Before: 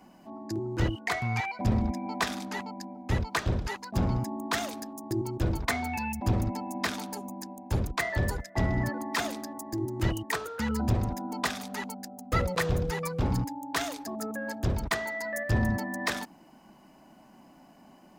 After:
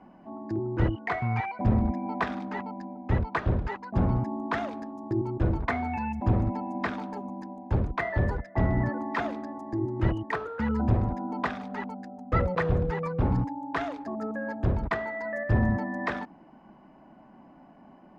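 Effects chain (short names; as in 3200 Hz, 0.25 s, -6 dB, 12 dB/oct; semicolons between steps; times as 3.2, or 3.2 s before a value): LPF 1700 Hz 12 dB/oct; gain +2.5 dB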